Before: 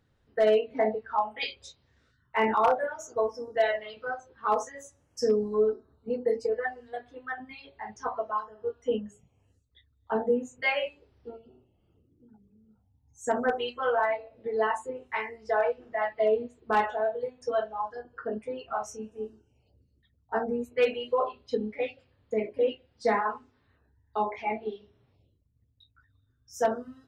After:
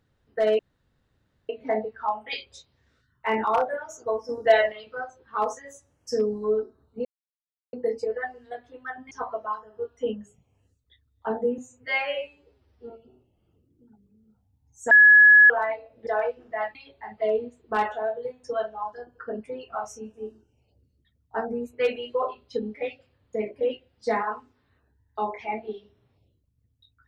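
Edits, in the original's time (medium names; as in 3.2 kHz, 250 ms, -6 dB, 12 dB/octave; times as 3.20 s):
0.59 s: insert room tone 0.90 s
3.39–3.82 s: gain +7 dB
6.15 s: insert silence 0.68 s
7.53–7.96 s: move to 16.16 s
10.43–11.31 s: stretch 1.5×
13.32–13.91 s: bleep 1.69 kHz -9.5 dBFS
14.48–15.48 s: delete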